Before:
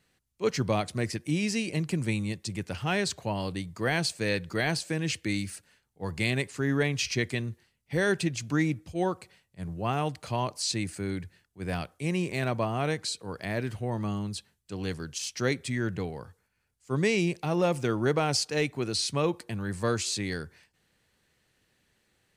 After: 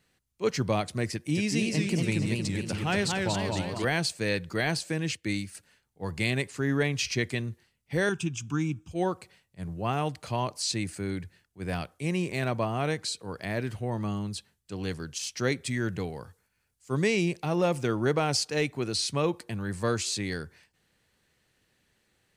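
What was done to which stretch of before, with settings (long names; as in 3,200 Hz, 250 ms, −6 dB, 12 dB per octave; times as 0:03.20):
0:01.12–0:03.85: feedback echo with a swinging delay time 234 ms, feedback 53%, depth 161 cents, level −3 dB
0:05.05–0:05.55: expander for the loud parts, over −50 dBFS
0:08.09–0:08.91: phaser with its sweep stopped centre 2,900 Hz, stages 8
0:15.66–0:17.04: high-shelf EQ 4,300 Hz +5 dB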